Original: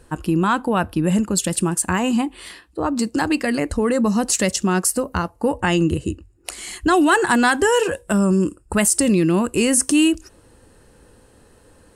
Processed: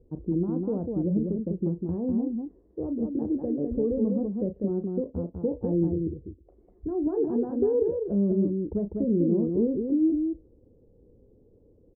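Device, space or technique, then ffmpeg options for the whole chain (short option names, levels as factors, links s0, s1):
under water: -filter_complex "[0:a]asettb=1/sr,asplit=3[s0][s1][s2];[s0]atrim=end=5.874[s3];[s1]atrim=start=5.87:end=7.07,asetpts=PTS-STARTPTS,afade=t=in:d=0.004:c=qsin,afade=t=out:st=1.196:d=0.004:c=qsin,equalizer=f=280:t=o:w=2.9:g=-5.5[s4];[s2]atrim=start=7.066[s5];[s3][s4]acrossfade=d=0.004:c1=hsin:c2=qsin[s6];[s6][s5]acrossfade=d=0.004:c1=qsin:c2=hsin,lowpass=f=490:w=0.5412,lowpass=f=490:w=1.3066,equalizer=f=440:t=o:w=0.53:g=4.5,aecho=1:1:34.99|198.3:0.316|0.631,volume=0.376"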